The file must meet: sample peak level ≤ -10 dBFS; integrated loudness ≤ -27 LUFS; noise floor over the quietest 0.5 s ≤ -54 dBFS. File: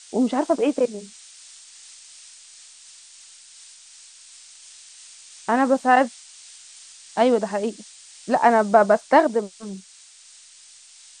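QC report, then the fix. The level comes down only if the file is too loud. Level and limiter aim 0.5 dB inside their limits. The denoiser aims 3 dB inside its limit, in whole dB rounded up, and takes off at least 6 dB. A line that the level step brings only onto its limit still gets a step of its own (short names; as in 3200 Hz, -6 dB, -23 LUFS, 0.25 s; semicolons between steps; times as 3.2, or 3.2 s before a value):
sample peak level -3.0 dBFS: fail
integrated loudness -20.0 LUFS: fail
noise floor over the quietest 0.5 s -49 dBFS: fail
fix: gain -7.5 dB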